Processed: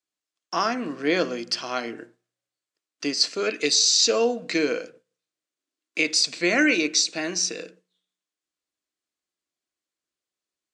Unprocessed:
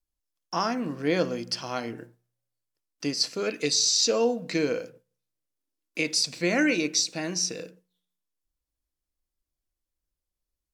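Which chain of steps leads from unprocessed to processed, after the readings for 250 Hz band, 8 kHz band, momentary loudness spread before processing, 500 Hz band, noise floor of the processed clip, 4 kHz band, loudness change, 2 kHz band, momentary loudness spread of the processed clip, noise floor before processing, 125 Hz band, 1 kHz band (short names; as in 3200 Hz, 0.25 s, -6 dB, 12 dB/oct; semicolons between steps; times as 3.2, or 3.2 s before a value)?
+1.5 dB, +3.0 dB, 13 LU, +2.0 dB, under -85 dBFS, +4.5 dB, +3.5 dB, +6.0 dB, 13 LU, under -85 dBFS, -5.5 dB, +3.0 dB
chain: speaker cabinet 320–8100 Hz, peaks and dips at 520 Hz -5 dB, 880 Hz -7 dB, 5500 Hz -4 dB; gain +6 dB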